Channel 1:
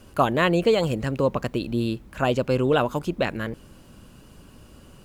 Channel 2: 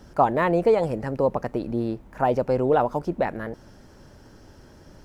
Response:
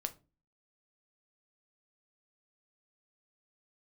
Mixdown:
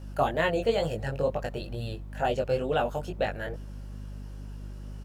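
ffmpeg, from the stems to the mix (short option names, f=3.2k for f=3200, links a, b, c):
-filter_complex "[0:a]aeval=exprs='val(0)+0.02*(sin(2*PI*50*n/s)+sin(2*PI*2*50*n/s)/2+sin(2*PI*3*50*n/s)/3+sin(2*PI*4*50*n/s)/4+sin(2*PI*5*50*n/s)/5)':c=same,volume=-4dB[a];[1:a]highpass=170,acompressor=threshold=-23dB:ratio=6,volume=-1,adelay=1.1,volume=-3dB[b];[a][b]amix=inputs=2:normalize=0,flanger=delay=18.5:depth=3.2:speed=2.2"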